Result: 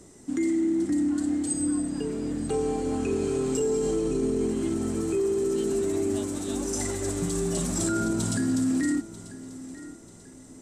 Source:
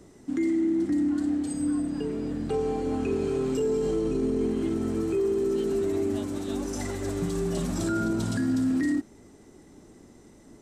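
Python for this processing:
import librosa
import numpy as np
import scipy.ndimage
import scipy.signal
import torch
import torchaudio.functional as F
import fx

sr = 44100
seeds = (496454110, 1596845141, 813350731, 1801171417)

y = fx.peak_eq(x, sr, hz=8100.0, db=11.5, octaves=0.95)
y = fx.echo_feedback(y, sr, ms=940, feedback_pct=39, wet_db=-16.5)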